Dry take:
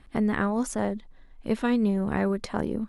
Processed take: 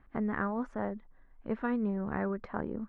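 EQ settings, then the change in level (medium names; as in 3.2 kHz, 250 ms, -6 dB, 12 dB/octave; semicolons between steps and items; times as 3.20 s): resonant low-pass 1.5 kHz, resonance Q 1.6; -8.0 dB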